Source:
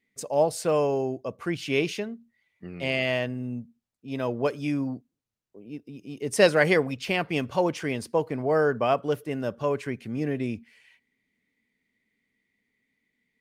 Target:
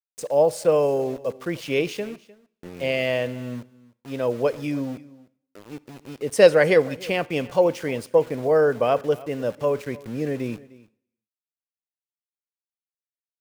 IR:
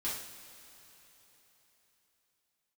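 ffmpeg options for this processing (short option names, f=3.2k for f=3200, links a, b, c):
-filter_complex "[0:a]equalizer=f=510:t=o:w=0.37:g=9.5,aeval=exprs='val(0)*gte(abs(val(0)),0.0106)':c=same,aecho=1:1:304:0.0891,asplit=2[a][b];[1:a]atrim=start_sample=2205,afade=t=out:st=0.43:d=0.01,atrim=end_sample=19404,adelay=33[c];[b][c]afir=irnorm=-1:irlink=0,volume=-24dB[d];[a][d]amix=inputs=2:normalize=0"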